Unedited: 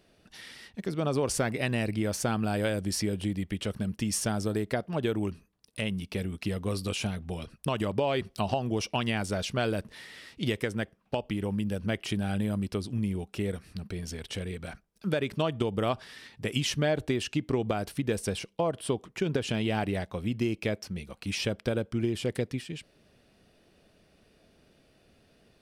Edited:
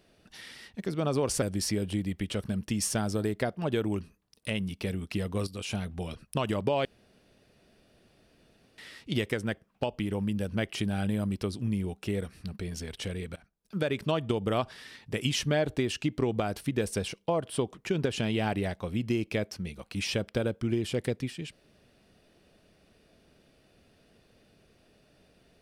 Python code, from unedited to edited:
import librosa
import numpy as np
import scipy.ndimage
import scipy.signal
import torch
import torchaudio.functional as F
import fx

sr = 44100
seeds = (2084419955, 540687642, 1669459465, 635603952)

y = fx.edit(x, sr, fx.cut(start_s=1.42, length_s=1.31),
    fx.fade_in_from(start_s=6.78, length_s=0.35, floor_db=-12.5),
    fx.room_tone_fill(start_s=8.16, length_s=1.93),
    fx.fade_in_from(start_s=14.67, length_s=0.53, floor_db=-22.5), tone=tone)